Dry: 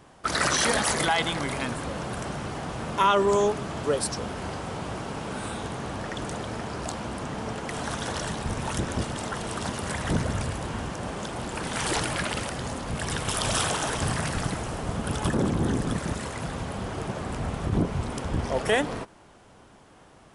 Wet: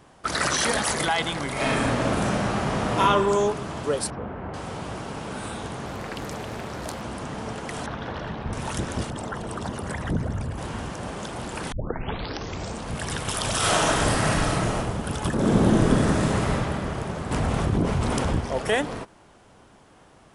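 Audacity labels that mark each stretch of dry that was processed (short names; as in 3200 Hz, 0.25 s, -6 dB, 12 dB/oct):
1.520000	3.000000	reverb throw, RT60 1.7 s, DRR -7.5 dB
4.100000	4.540000	Bessel low-pass 1500 Hz, order 4
5.860000	7.020000	Doppler distortion depth 0.62 ms
7.860000	8.530000	air absorption 290 m
9.100000	10.580000	formant sharpening exponent 1.5
11.720000	11.720000	tape start 1.19 s
13.580000	14.770000	reverb throw, RT60 0.93 s, DRR -5.5 dB
15.340000	16.520000	reverb throw, RT60 2.9 s, DRR -6.5 dB
17.310000	18.390000	fast leveller amount 70%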